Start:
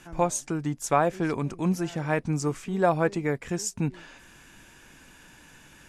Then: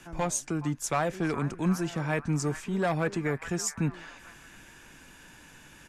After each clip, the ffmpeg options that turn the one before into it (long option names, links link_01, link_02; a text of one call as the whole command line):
ffmpeg -i in.wav -filter_complex "[0:a]acrossover=split=200|1300|1800[link_01][link_02][link_03][link_04];[link_02]asoftclip=type=tanh:threshold=-26dB[link_05];[link_03]aecho=1:1:420|756|1025|1240|1412:0.631|0.398|0.251|0.158|0.1[link_06];[link_01][link_05][link_06][link_04]amix=inputs=4:normalize=0" out.wav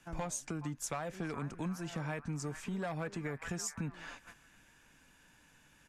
ffmpeg -i in.wav -af "agate=range=-12dB:threshold=-47dB:ratio=16:detection=peak,equalizer=frequency=360:width_type=o:width=0.26:gain=-6,acompressor=threshold=-36dB:ratio=6" out.wav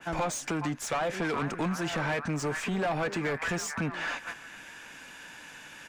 ffmpeg -i in.wav -filter_complex "[0:a]equalizer=frequency=1100:width_type=o:width=0.77:gain=-2.5,asplit=2[link_01][link_02];[link_02]highpass=frequency=720:poles=1,volume=22dB,asoftclip=type=tanh:threshold=-26.5dB[link_03];[link_01][link_03]amix=inputs=2:normalize=0,lowpass=frequency=3700:poles=1,volume=-6dB,adynamicequalizer=threshold=0.00316:dfrequency=2500:dqfactor=0.7:tfrequency=2500:tqfactor=0.7:attack=5:release=100:ratio=0.375:range=1.5:mode=cutabove:tftype=highshelf,volume=5dB" out.wav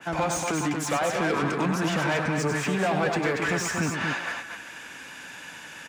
ffmpeg -i in.wav -filter_complex "[0:a]highpass=67,asplit=2[link_01][link_02];[link_02]aecho=0:1:99.13|233.2:0.447|0.562[link_03];[link_01][link_03]amix=inputs=2:normalize=0,volume=3.5dB" out.wav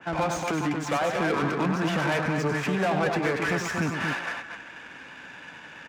ffmpeg -i in.wav -af "adynamicsmooth=sensitivity=5.5:basefreq=2500" out.wav